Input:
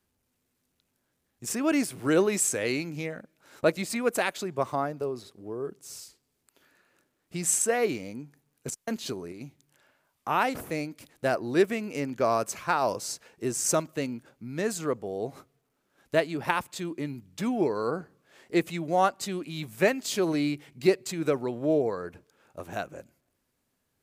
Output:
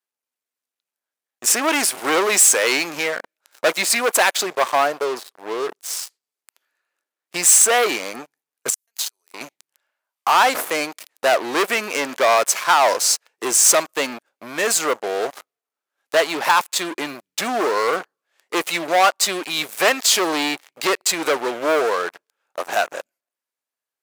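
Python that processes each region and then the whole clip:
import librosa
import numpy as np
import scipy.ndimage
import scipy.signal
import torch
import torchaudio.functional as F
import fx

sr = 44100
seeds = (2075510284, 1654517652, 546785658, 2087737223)

y = fx.chain(x, sr, fx.over_compress(threshold_db=-41.0, ratio=-1.0),
    fx.differentiator(), at=(8.7, 9.34))
y = fx.leveller(y, sr, passes=5)
y = scipy.signal.sosfilt(scipy.signal.butter(2, 670.0, 'highpass', fs=sr, output='sos'), y)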